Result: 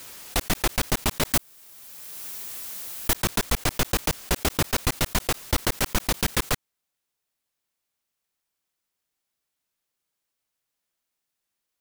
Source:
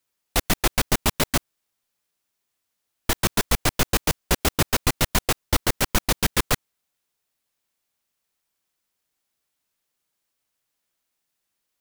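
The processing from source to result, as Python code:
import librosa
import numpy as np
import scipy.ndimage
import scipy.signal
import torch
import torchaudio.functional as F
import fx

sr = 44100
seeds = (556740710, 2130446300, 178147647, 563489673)

y = fx.high_shelf(x, sr, hz=8300.0, db=9.0, at=(1.33, 3.14))
y = fx.pre_swell(y, sr, db_per_s=21.0)
y = y * librosa.db_to_amplitude(-3.5)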